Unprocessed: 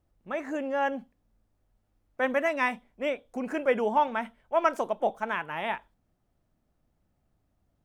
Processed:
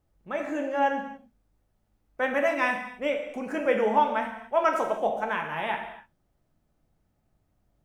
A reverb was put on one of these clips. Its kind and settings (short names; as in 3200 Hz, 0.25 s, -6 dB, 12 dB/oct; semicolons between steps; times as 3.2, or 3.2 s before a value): non-linear reverb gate 0.31 s falling, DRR 2.5 dB